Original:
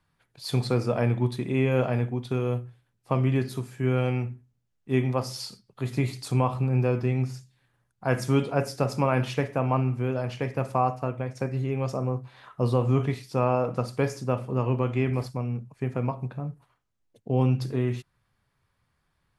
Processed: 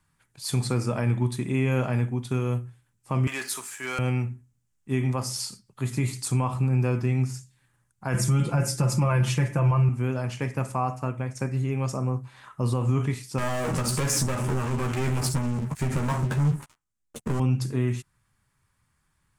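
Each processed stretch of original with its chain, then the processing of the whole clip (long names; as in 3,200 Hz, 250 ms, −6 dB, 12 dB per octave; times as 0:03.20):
0:03.27–0:03.99: high-pass filter 860 Hz + leveller curve on the samples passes 2
0:08.14–0:09.89: low-shelf EQ 210 Hz +8.5 dB + comb filter 5.8 ms, depth 94%
0:13.38–0:17.40: downward compressor 10 to 1, threshold −33 dBFS + leveller curve on the samples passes 5 + double-tracking delay 13 ms −5 dB
whole clip: octave-band graphic EQ 500/4,000/8,000 Hz −7/−5/+10 dB; brickwall limiter −17.5 dBFS; notch filter 710 Hz, Q 12; level +2.5 dB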